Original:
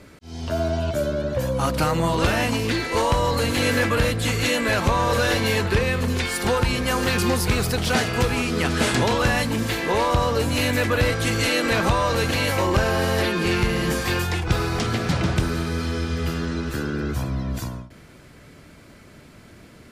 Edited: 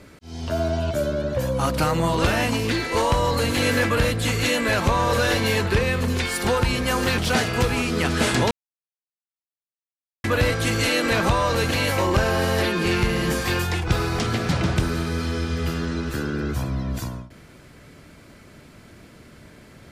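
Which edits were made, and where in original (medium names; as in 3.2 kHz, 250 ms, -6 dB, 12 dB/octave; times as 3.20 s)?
7.18–7.78 s: delete
9.11–10.84 s: mute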